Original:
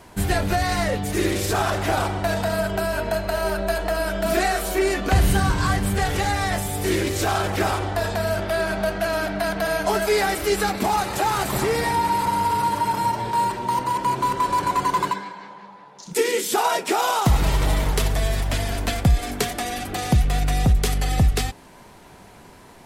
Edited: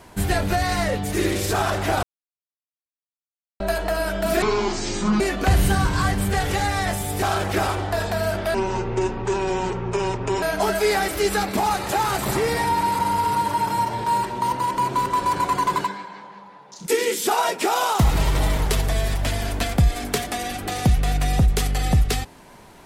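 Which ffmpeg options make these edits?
-filter_complex "[0:a]asplit=8[a][b][c][d][e][f][g][h];[a]atrim=end=2.03,asetpts=PTS-STARTPTS,afade=t=out:st=2.026:d=0.004:c=hsin[i];[b]atrim=start=2.03:end=3.6,asetpts=PTS-STARTPTS,volume=0[j];[c]atrim=start=3.6:end=4.424,asetpts=PTS-STARTPTS,afade=t=in:d=0.004:c=hsin[k];[d]atrim=start=4.42:end=4.85,asetpts=PTS-STARTPTS,asetrate=24255,aresample=44100,atrim=end_sample=34478,asetpts=PTS-STARTPTS[l];[e]atrim=start=4.846:end=6.872[m];[f]atrim=start=7.258:end=8.584[n];[g]atrim=start=8.58:end=9.69,asetpts=PTS-STARTPTS,asetrate=26019,aresample=44100[o];[h]atrim=start=9.686[p];[i][j][k]concat=n=3:v=0:a=1[q];[q][l]acrossfade=d=0.004:c1=hsin:c2=hsin[r];[r][m]acrossfade=d=0.004:c1=hsin:c2=hsin[s];[s][n]acrossfade=d=0.004:c1=hsin:c2=hsin[t];[t][o]acrossfade=d=0.004:c1=hsin:c2=hsin[u];[u][p]acrossfade=d=0.004:c1=hsin:c2=hsin"

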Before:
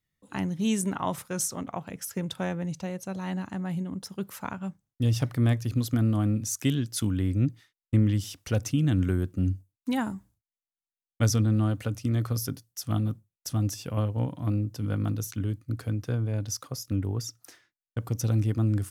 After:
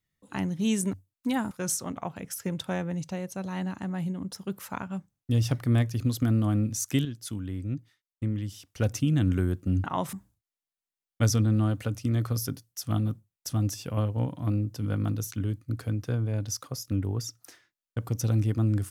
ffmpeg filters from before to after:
-filter_complex "[0:a]asplit=7[a][b][c][d][e][f][g];[a]atrim=end=0.932[h];[b]atrim=start=9.548:end=10.132[i];[c]atrim=start=1.218:end=6.762[j];[d]atrim=start=6.758:end=8.512,asetpts=PTS-STARTPTS,volume=-7.5dB[k];[e]atrim=start=8.508:end=9.552[l];[f]atrim=start=0.928:end=1.222[m];[g]atrim=start=10.128[n];[h][i]acrossfade=d=0.004:c1=hsin:c2=hsin[o];[o][j]acrossfade=d=0.004:c1=hsin:c2=hsin[p];[p][k]acrossfade=d=0.004:c1=hsin:c2=hsin[q];[q][l]acrossfade=d=0.004:c1=hsin:c2=hsin[r];[r][m]acrossfade=d=0.004:c1=hsin:c2=hsin[s];[s][n]acrossfade=d=0.004:c1=hsin:c2=hsin"

